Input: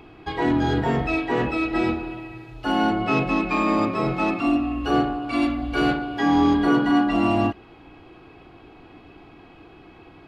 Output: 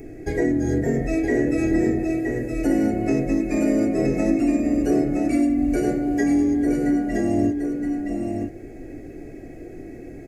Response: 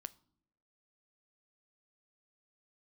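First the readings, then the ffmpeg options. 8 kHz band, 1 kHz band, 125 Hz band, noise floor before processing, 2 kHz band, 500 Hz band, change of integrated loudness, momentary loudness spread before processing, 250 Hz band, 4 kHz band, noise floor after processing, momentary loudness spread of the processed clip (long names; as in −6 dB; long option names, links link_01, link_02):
can't be measured, −10.5 dB, +0.5 dB, −48 dBFS, −6.0 dB, +2.5 dB, +0.5 dB, 7 LU, +2.5 dB, below −10 dB, −39 dBFS, 18 LU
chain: -filter_complex "[0:a]firequalizer=gain_entry='entry(130,0);entry(280,6);entry(610,5);entry(1000,-26);entry(1900,4);entry(3100,-22);entry(6400,13)':delay=0.05:min_phase=1,flanger=delay=7.2:depth=1.3:regen=-62:speed=0.76:shape=triangular,lowshelf=frequency=72:gain=11.5,acompressor=threshold=-26dB:ratio=6,asplit=2[link_01][link_02];[link_02]aecho=0:1:969:0.562[link_03];[link_01][link_03]amix=inputs=2:normalize=0,volume=7.5dB"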